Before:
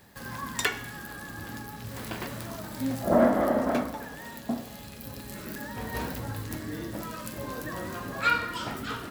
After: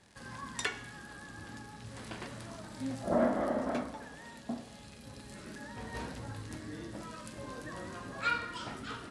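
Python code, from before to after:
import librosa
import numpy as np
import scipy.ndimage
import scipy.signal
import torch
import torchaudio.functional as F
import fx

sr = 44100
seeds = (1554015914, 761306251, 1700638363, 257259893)

y = fx.dmg_crackle(x, sr, seeds[0], per_s=160.0, level_db=-39.0)
y = scipy.signal.sosfilt(scipy.signal.ellip(4, 1.0, 50, 10000.0, 'lowpass', fs=sr, output='sos'), y)
y = F.gain(torch.from_numpy(y), -6.5).numpy()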